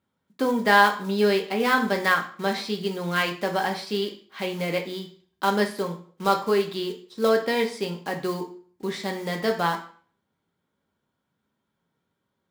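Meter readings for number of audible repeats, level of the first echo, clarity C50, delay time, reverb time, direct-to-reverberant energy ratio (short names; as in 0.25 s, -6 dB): none, none, 10.5 dB, none, 0.50 s, 2.0 dB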